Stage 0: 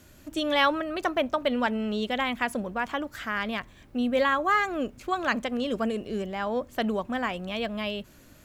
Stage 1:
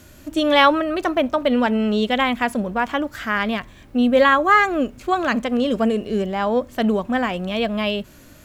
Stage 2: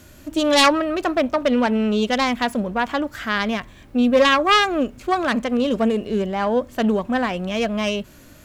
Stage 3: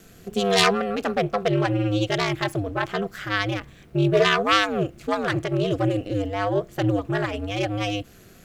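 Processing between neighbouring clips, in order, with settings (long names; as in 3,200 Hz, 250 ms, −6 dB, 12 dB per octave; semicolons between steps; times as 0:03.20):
harmonic and percussive parts rebalanced harmonic +6 dB; level +3.5 dB
phase distortion by the signal itself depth 0.19 ms
ring modulation 100 Hz; parametric band 930 Hz −8 dB 0.27 octaves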